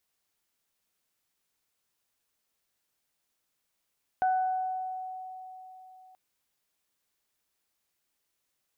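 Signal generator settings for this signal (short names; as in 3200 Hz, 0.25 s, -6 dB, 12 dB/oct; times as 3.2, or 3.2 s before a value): additive tone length 1.93 s, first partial 747 Hz, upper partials -12.5 dB, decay 3.76 s, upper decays 1.13 s, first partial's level -22 dB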